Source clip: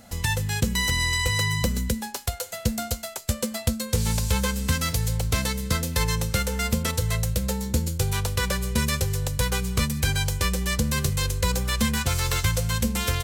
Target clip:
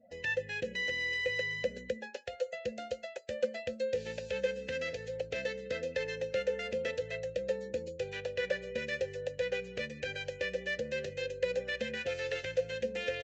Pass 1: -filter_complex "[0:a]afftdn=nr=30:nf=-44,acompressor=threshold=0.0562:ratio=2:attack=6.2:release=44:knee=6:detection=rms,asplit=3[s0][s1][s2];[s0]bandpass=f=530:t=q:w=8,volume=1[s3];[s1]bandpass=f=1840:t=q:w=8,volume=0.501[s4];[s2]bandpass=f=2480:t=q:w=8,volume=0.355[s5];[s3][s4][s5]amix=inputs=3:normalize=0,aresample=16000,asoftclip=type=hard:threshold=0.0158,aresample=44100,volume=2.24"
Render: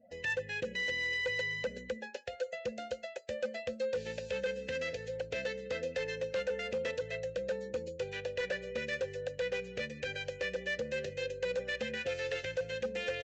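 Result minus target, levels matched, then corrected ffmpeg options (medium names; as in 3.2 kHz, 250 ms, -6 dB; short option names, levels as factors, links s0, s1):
hard clipper: distortion +19 dB
-filter_complex "[0:a]afftdn=nr=30:nf=-44,acompressor=threshold=0.0562:ratio=2:attack=6.2:release=44:knee=6:detection=rms,asplit=3[s0][s1][s2];[s0]bandpass=f=530:t=q:w=8,volume=1[s3];[s1]bandpass=f=1840:t=q:w=8,volume=0.501[s4];[s2]bandpass=f=2480:t=q:w=8,volume=0.355[s5];[s3][s4][s5]amix=inputs=3:normalize=0,aresample=16000,asoftclip=type=hard:threshold=0.0376,aresample=44100,volume=2.24"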